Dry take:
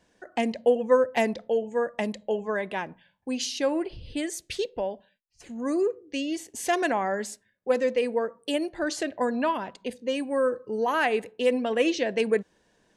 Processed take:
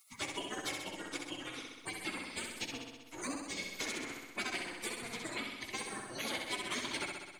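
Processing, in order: spectral gate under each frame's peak -30 dB weak; plain phase-vocoder stretch 0.57×; in parallel at -3.5 dB: hysteresis with a dead band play -46 dBFS; on the sum: small resonant body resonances 290/2200 Hz, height 12 dB, ringing for 20 ms; on a send: flutter echo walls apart 11 m, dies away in 0.84 s; on the sum: three bands compressed up and down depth 70%; trim +6 dB

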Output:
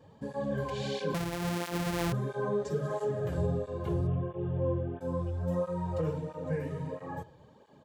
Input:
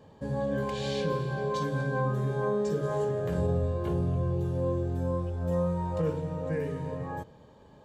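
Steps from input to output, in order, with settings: 1.14–2.13 s: sorted samples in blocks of 256 samples; 4.07–5.01 s: steep low-pass 3.4 kHz 96 dB/octave; speakerphone echo 80 ms, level -20 dB; cancelling through-zero flanger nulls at 1.5 Hz, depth 5.2 ms

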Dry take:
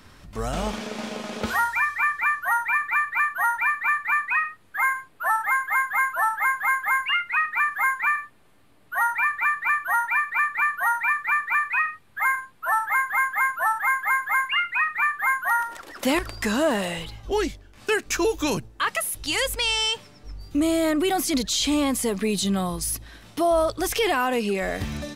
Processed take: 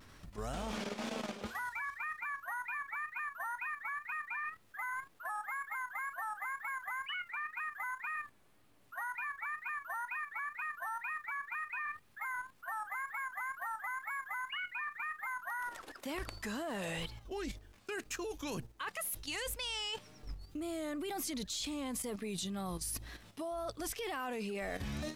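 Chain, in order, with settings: reverse; compression 8:1, threshold -30 dBFS, peak gain reduction 13 dB; reverse; bit crusher 11-bit; vibrato 2 Hz 86 cents; level held to a coarse grid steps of 9 dB; trim -3 dB

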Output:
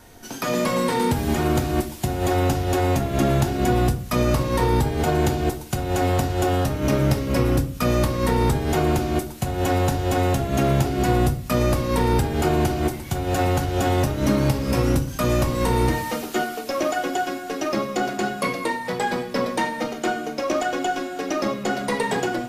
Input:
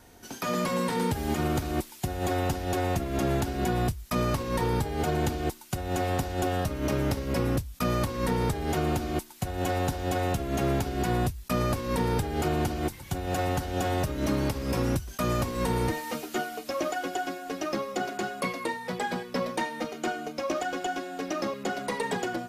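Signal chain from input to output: thinning echo 222 ms, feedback 83%, high-pass 1.1 kHz, level -22.5 dB; on a send at -6 dB: reverberation RT60 0.45 s, pre-delay 3 ms; on the sum: trim +5.5 dB

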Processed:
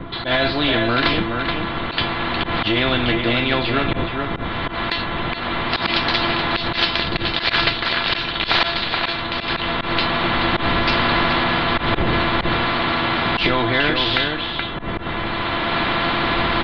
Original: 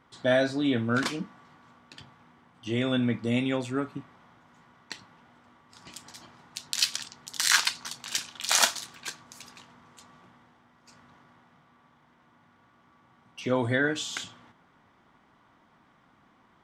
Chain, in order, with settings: CVSD coder 64 kbps; recorder AGC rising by 17 dB/s; wind noise 180 Hz -31 dBFS; steep low-pass 4.1 kHz 72 dB/octave; feedback comb 340 Hz, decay 0.17 s, harmonics all, mix 90%; echo from a far wall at 73 m, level -9 dB; saturation -9.5 dBFS, distortion -32 dB; slow attack 106 ms; loudness maximiser +26.5 dB; spectrum-flattening compressor 2:1; trim -1 dB

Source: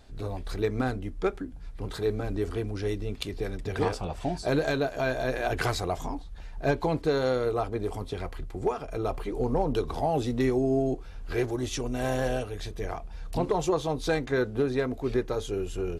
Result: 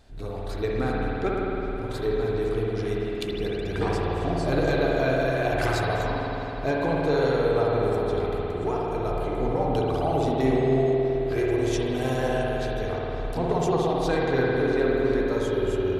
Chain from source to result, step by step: spring tank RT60 4 s, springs 53 ms, chirp 30 ms, DRR -4.5 dB; trim -1.5 dB

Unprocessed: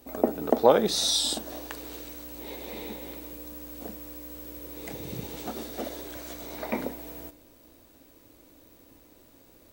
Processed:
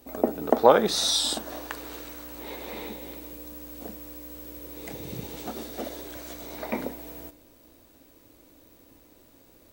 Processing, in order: 0.51–2.89 s: peaking EQ 1.3 kHz +6.5 dB 1.5 oct

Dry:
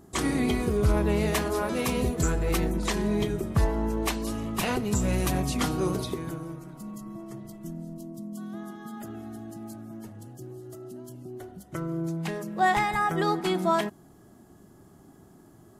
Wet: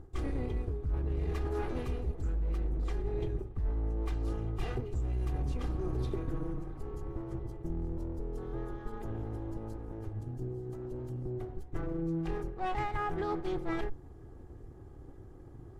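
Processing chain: comb filter that takes the minimum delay 2.5 ms; RIAA curve playback; reverse; compression 12:1, threshold -26 dBFS, peak gain reduction 22.5 dB; reverse; trim -3.5 dB

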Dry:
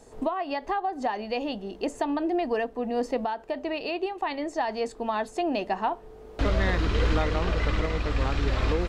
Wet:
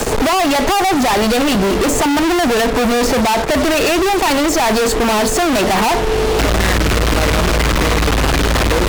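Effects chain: fuzz box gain 55 dB, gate -53 dBFS; three bands compressed up and down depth 40%

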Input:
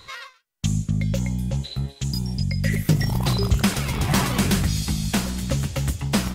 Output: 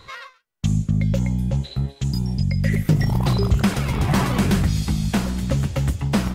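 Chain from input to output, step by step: treble shelf 2.6 kHz -9 dB; in parallel at -2.5 dB: peak limiter -15 dBFS, peak gain reduction 7.5 dB; on the sum: trim -1.5 dB

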